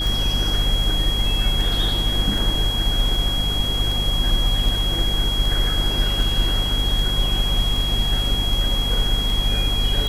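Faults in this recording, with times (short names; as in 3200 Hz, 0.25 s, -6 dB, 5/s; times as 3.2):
hum 50 Hz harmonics 5 -25 dBFS
tick 78 rpm
tone 3300 Hz -23 dBFS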